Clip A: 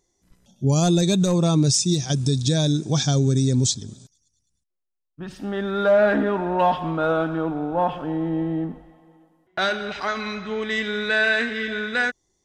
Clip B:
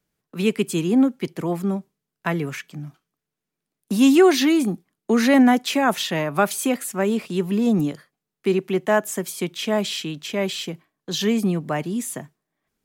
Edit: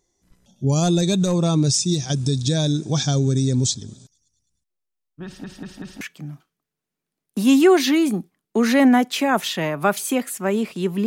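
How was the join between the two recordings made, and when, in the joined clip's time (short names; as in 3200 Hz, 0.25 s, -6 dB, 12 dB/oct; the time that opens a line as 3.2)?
clip A
5.25 stutter in place 0.19 s, 4 plays
6.01 switch to clip B from 2.55 s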